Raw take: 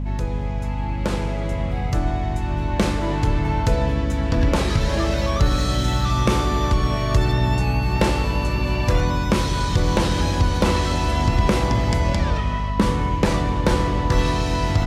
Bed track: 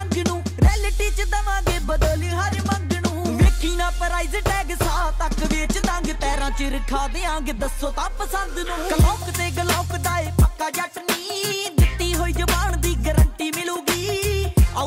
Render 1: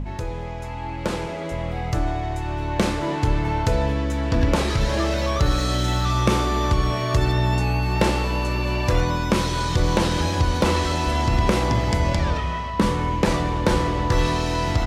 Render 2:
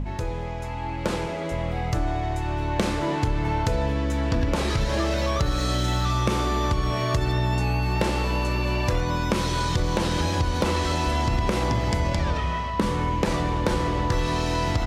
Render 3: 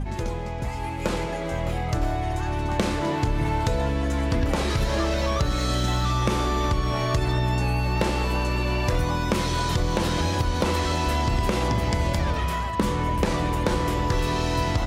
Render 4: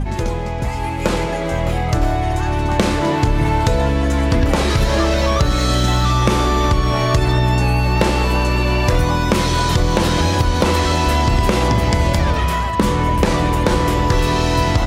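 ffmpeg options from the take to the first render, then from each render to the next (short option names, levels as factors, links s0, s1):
-af "bandreject=f=50:t=h:w=4,bandreject=f=100:t=h:w=4,bandreject=f=150:t=h:w=4,bandreject=f=200:t=h:w=4,bandreject=f=250:t=h:w=4"
-af "acompressor=threshold=0.112:ratio=6"
-filter_complex "[1:a]volume=0.141[s0];[0:a][s0]amix=inputs=2:normalize=0"
-af "volume=2.51,alimiter=limit=0.708:level=0:latency=1"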